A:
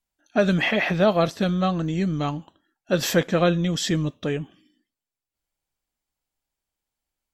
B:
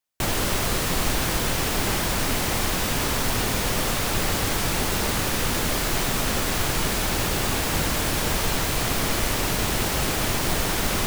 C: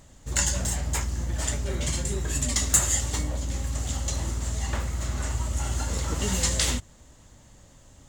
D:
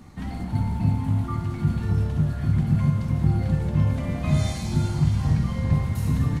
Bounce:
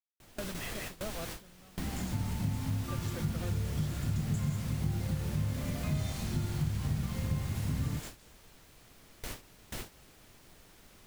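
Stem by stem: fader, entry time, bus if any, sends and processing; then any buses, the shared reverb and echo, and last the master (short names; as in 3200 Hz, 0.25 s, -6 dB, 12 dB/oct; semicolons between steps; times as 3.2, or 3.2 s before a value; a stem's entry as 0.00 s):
-17.0 dB, 0.00 s, no send, dry
-12.5 dB, 0.00 s, no send, dry
-19.5 dB, 1.60 s, no send, dry
-0.5 dB, 1.60 s, no send, dry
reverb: off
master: gate with hold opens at -23 dBFS; bell 930 Hz -2.5 dB 1.4 oct; compressor 2:1, threshold -38 dBFS, peak gain reduction 12.5 dB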